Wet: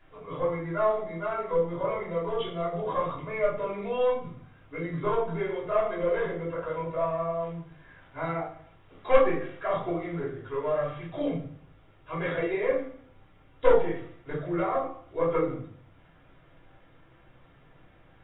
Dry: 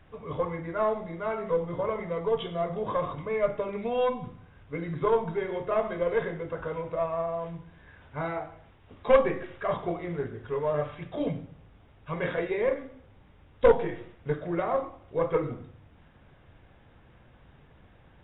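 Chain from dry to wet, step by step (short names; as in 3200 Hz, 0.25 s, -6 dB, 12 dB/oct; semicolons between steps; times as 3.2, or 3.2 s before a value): low shelf 270 Hz -9 dB; shoebox room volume 160 m³, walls furnished, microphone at 3.1 m; gain -5.5 dB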